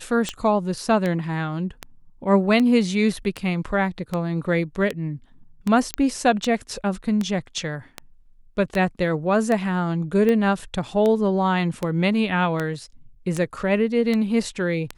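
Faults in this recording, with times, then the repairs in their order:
tick 78 rpm -12 dBFS
5.94 s: pop -7 dBFS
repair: de-click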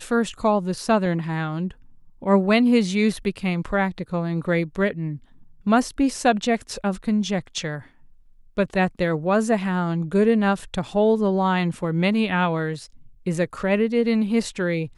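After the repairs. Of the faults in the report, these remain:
nothing left

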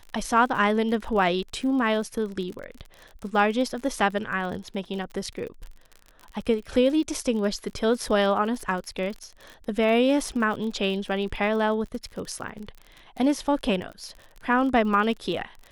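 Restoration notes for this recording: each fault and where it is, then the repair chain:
crackle 39 per s -33 dBFS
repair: de-click

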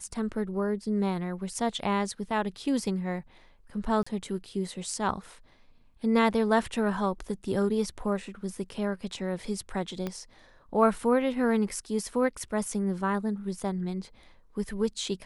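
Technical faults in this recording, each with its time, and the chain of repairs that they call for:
4.03–4.07 s: dropout 35 ms
10.07 s: pop -19 dBFS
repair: de-click; interpolate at 4.03 s, 35 ms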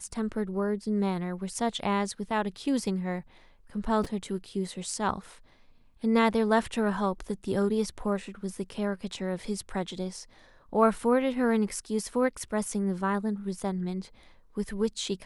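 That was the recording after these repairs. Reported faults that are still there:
10.07 s: pop

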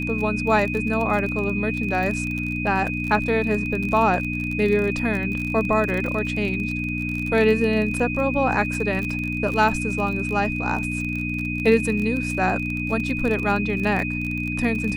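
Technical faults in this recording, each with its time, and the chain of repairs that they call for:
crackle 33 per s -26 dBFS
hum 60 Hz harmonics 5 -28 dBFS
whine 2.5 kHz -28 dBFS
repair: de-click; de-hum 60 Hz, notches 5; band-stop 2.5 kHz, Q 30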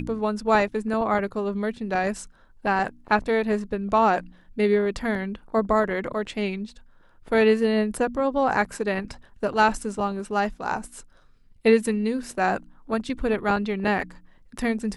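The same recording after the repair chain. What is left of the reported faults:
nothing left

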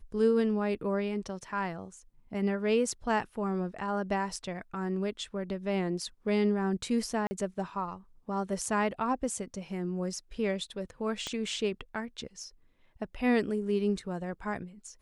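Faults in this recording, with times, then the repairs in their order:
7.27–7.31 s: dropout 40 ms
11.27 s: pop -21 dBFS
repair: de-click; interpolate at 7.27 s, 40 ms

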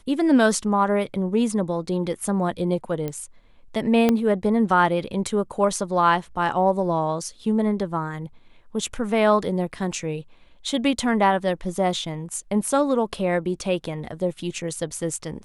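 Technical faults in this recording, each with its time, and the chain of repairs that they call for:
3.08 s: pop -16 dBFS
4.09 s: pop -7 dBFS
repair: de-click

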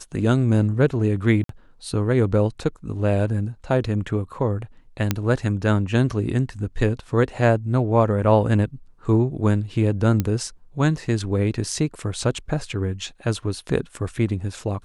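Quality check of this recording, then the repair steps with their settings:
1.44–1.49 s: dropout 53 ms
5.11 s: pop -5 dBFS
10.20 s: pop -9 dBFS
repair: de-click; interpolate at 1.44 s, 53 ms

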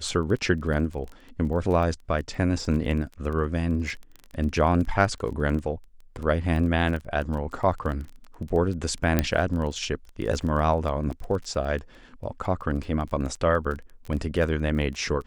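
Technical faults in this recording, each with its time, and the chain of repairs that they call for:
crackle 20 per s -32 dBFS
9.19 s: pop -7 dBFS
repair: de-click

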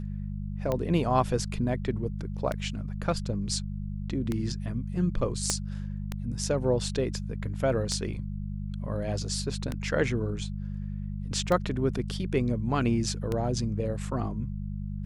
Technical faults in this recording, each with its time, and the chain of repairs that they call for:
hum 50 Hz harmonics 4 -34 dBFS
tick 33 1/3 rpm -16 dBFS
5.50 s: pop -11 dBFS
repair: de-click; de-hum 50 Hz, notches 4

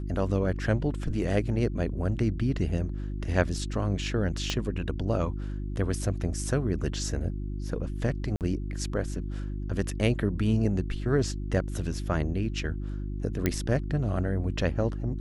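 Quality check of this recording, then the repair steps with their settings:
hum 50 Hz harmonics 7 -33 dBFS
4.50 s: pop -14 dBFS
8.36–8.41 s: dropout 48 ms
13.46 s: pop -11 dBFS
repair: de-click; de-hum 50 Hz, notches 7; interpolate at 8.36 s, 48 ms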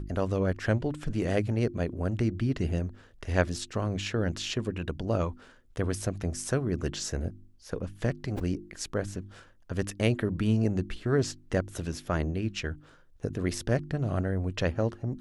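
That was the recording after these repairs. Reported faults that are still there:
4.50 s: pop

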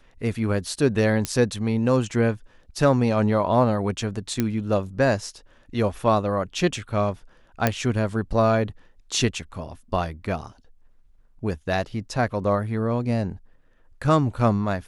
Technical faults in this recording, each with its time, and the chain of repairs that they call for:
1.25 s: pop -9 dBFS
4.40 s: pop -9 dBFS
7.67 s: pop -5 dBFS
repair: de-click

